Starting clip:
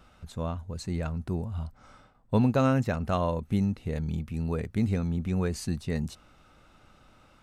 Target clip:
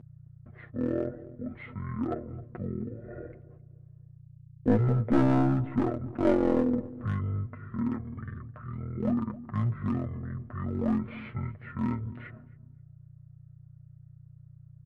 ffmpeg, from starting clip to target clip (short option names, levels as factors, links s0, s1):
-filter_complex "[0:a]agate=range=0.0282:threshold=0.00562:ratio=16:detection=peak,lowpass=f=3300:w=0.5412,lowpass=f=3300:w=1.3066,equalizer=f=1700:t=o:w=0.41:g=-13,aeval=exprs='val(0)+0.0126*(sin(2*PI*60*n/s)+sin(2*PI*2*60*n/s)/2+sin(2*PI*3*60*n/s)/3+sin(2*PI*4*60*n/s)/4+sin(2*PI*5*60*n/s)/5)':c=same,highpass=450,aeval=exprs='clip(val(0),-1,0.0299)':c=same,aecho=1:1:4.2:0.63,asplit=2[s0][s1];[s1]adelay=132,lowpass=f=1400:p=1,volume=0.158,asplit=2[s2][s3];[s3]adelay=132,lowpass=f=1400:p=1,volume=0.37,asplit=2[s4][s5];[s5]adelay=132,lowpass=f=1400:p=1,volume=0.37[s6];[s2][s4][s6]amix=inputs=3:normalize=0[s7];[s0][s7]amix=inputs=2:normalize=0,asetrate=22050,aresample=44100,volume=2.11"